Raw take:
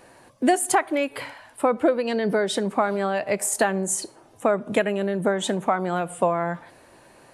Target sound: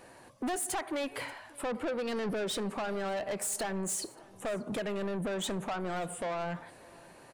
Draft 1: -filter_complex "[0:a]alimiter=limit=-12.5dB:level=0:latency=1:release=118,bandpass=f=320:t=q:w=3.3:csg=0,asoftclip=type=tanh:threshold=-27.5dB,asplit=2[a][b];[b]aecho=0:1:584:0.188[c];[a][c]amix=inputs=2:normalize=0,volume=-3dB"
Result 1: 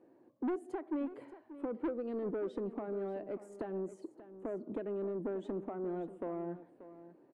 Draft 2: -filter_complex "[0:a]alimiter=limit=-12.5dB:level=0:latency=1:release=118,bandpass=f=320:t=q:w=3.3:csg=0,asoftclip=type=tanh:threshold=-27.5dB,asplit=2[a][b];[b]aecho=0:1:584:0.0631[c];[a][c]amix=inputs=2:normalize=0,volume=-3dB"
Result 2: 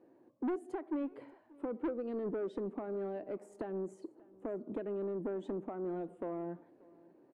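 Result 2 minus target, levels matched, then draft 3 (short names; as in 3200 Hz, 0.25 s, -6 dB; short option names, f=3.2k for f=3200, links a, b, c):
250 Hz band +3.0 dB
-filter_complex "[0:a]alimiter=limit=-12.5dB:level=0:latency=1:release=118,asoftclip=type=tanh:threshold=-27.5dB,asplit=2[a][b];[b]aecho=0:1:584:0.0631[c];[a][c]amix=inputs=2:normalize=0,volume=-3dB"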